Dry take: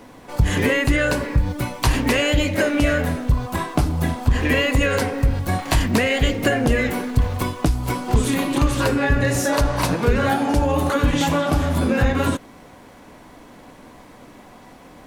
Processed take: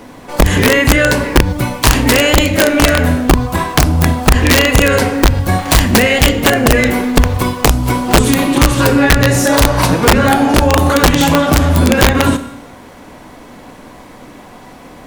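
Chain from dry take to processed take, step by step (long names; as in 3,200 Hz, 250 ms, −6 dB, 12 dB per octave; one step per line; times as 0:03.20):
four-comb reverb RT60 0.83 s, combs from 25 ms, DRR 10.5 dB
wrap-around overflow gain 9 dB
level +8 dB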